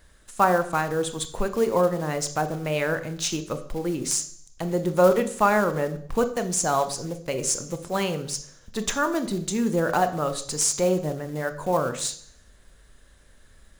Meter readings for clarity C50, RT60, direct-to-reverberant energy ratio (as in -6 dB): 13.0 dB, 0.60 s, 9.0 dB